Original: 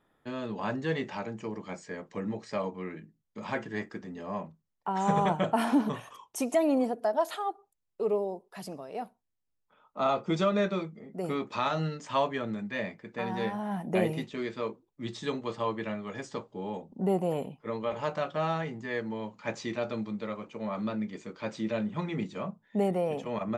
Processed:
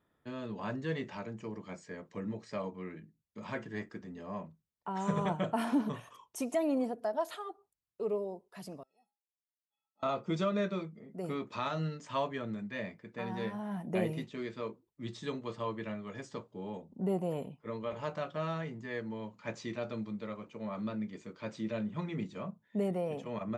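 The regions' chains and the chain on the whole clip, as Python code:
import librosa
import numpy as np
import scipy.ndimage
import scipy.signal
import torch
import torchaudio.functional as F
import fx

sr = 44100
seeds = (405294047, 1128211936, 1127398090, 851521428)

y = fx.chain(x, sr, fx.fixed_phaser(hz=400.0, stages=6),
    fx.stiff_resonator(f0_hz=390.0, decay_s=0.41, stiffness=0.03), at=(8.83, 10.03))
y = scipy.signal.sosfilt(scipy.signal.butter(2, 46.0, 'highpass', fs=sr, output='sos'), y)
y = fx.low_shelf(y, sr, hz=120.0, db=8.0)
y = fx.notch(y, sr, hz=800.0, q=12.0)
y = F.gain(torch.from_numpy(y), -6.0).numpy()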